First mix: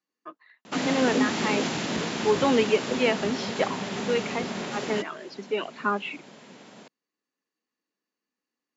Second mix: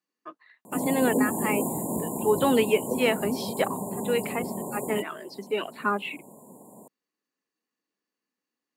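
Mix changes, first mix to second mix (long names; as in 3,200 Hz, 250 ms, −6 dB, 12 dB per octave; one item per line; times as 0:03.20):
background: add linear-phase brick-wall band-stop 1,100–6,800 Hz
master: remove linear-phase brick-wall low-pass 7,500 Hz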